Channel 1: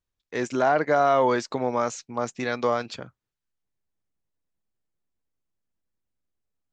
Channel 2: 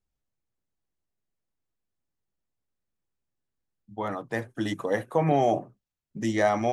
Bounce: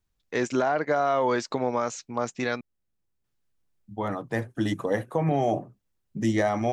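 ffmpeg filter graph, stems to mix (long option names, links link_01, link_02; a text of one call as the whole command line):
ffmpeg -i stem1.wav -i stem2.wav -filter_complex "[0:a]volume=3dB,asplit=3[link_01][link_02][link_03];[link_01]atrim=end=2.61,asetpts=PTS-STARTPTS,afade=type=out:start_time=2.606:duration=0.004:curve=hsin[link_04];[link_02]atrim=start=2.61:end=3.24,asetpts=PTS-STARTPTS,volume=0[link_05];[link_03]atrim=start=3.24,asetpts=PTS-STARTPTS,afade=type=in:duration=0.004:curve=hsin[link_06];[link_04][link_05][link_06]concat=n=3:v=0:a=1[link_07];[1:a]lowshelf=frequency=240:gain=6.5,volume=0dB[link_08];[link_07][link_08]amix=inputs=2:normalize=0,alimiter=limit=-14dB:level=0:latency=1:release=481" out.wav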